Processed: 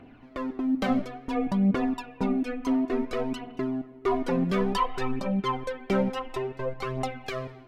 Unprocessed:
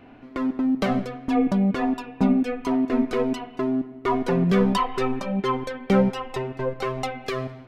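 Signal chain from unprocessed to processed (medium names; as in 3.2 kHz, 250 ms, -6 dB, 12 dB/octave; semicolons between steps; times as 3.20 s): phaser 0.57 Hz, delay 4 ms, feedback 50%; trim -5 dB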